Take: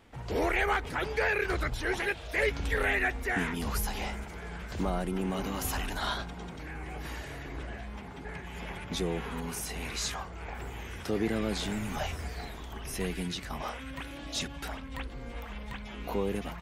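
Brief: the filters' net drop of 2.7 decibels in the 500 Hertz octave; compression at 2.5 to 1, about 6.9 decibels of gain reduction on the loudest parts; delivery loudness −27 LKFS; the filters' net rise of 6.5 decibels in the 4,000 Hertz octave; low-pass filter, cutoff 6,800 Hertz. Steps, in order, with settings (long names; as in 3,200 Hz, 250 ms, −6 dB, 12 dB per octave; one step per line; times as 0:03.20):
low-pass filter 6,800 Hz
parametric band 500 Hz −3.5 dB
parametric band 4,000 Hz +8.5 dB
downward compressor 2.5 to 1, threshold −34 dBFS
level +10 dB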